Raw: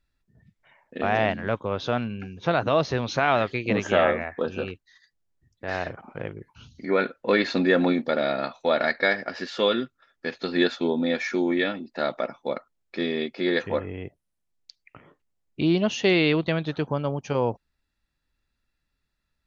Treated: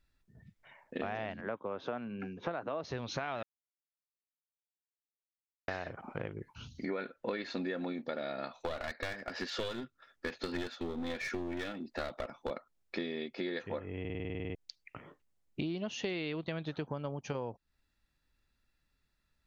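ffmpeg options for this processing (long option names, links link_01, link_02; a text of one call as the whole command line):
ffmpeg -i in.wav -filter_complex "[0:a]asettb=1/sr,asplit=3[link_01][link_02][link_03];[link_01]atrim=end=1.414[link_04];[link_02]atrim=start=1.41:end=2.84,asetpts=PTS-STARTPTS,afade=type=in:duration=0.004:curve=qsin,afade=type=out:start_time=1.426:duration=0.004:curve=qsin,acrossover=split=170 2300:gain=0.126 1 0.2[link_05][link_06][link_07];[link_05][link_06][link_07]amix=inputs=3:normalize=0[link_08];[link_03]atrim=start=2.836[link_09];[link_04][link_08]acrossfade=duration=0.004:curve1=hsin:curve2=qsin[link_10];[link_10][link_09]acrossfade=duration=0.004:curve1=qsin:curve2=hsin,asettb=1/sr,asplit=3[link_11][link_12][link_13];[link_11]atrim=end=8.624[link_14];[link_12]atrim=start=8.62:end=12.51,asetpts=PTS-STARTPTS,afade=type=in:duration=0.004:curve=qsin,afade=type=out:start_time=3.886:duration=0.004:curve=qsin,aeval=exprs='clip(val(0),-1,0.0355)':channel_layout=same[link_15];[link_13]atrim=start=12.506[link_16];[link_14][link_15]acrossfade=duration=0.004:curve1=hsin:curve2=qsin[link_17];[link_17][link_16]acrossfade=duration=0.004:curve1=qsin:curve2=hsin,asplit=14[link_18][link_19][link_20][link_21][link_22][link_23][link_24][link_25][link_26][link_27][link_28][link_29][link_30][link_31];[link_18]atrim=end=3.43,asetpts=PTS-STARTPTS,afade=type=out:start_time=3.426:duration=0.004:curve=hsin[link_32];[link_19]atrim=start=3.43:end=5.68,asetpts=PTS-STARTPTS,volume=0[link_33];[link_20]atrim=start=5.68:end=14.052,asetpts=PTS-STARTPTS,afade=type=in:duration=0.004:curve=hsin[link_34];[link_21]atrim=start=13.998:end=14.052[link_35];[link_22]atrim=start=13.998:end=14.052[link_36];[link_23]atrim=start=13.998:end=14.052[link_37];[link_24]atrim=start=13.998:end=14.052[link_38];[link_25]atrim=start=13.998:end=14.052[link_39];[link_26]atrim=start=13.998:end=14.052[link_40];[link_27]atrim=start=13.998:end=14.052[link_41];[link_28]atrim=start=13.998:end=14.052[link_42];[link_29]atrim=start=13.998:end=14.052[link_43];[link_30]atrim=start=13.998:end=14.052[link_44];[link_31]atrim=start=14.548[link_45];[link_32][link_33][link_34]concat=n=3:v=0:a=1[link_46];[link_46][link_35]acrossfade=duration=0.004:curve1=hsin:curve2=hsin[link_47];[link_47][link_36]acrossfade=duration=0.004:curve1=hsin:curve2=hsin[link_48];[link_48][link_37]acrossfade=duration=0.004:curve1=hsin:curve2=hsin[link_49];[link_49][link_38]acrossfade=duration=0.004:curve1=hsin:curve2=hsin[link_50];[link_50][link_39]acrossfade=duration=0.004:curve1=hsin:curve2=hsin[link_51];[link_51][link_40]acrossfade=duration=0.004:curve1=hsin:curve2=hsin[link_52];[link_52][link_41]acrossfade=duration=0.004:curve1=hsin:curve2=hsin[link_53];[link_53][link_42]acrossfade=duration=0.004:curve1=hsin:curve2=hsin[link_54];[link_54][link_43]acrossfade=duration=0.004:curve1=hsin:curve2=hsin[link_55];[link_55][link_44]acrossfade=duration=0.004:curve1=hsin:curve2=hsin[link_56];[link_56][link_45]acrossfade=duration=0.004:curve1=hsin:curve2=hsin,acompressor=threshold=-34dB:ratio=10" out.wav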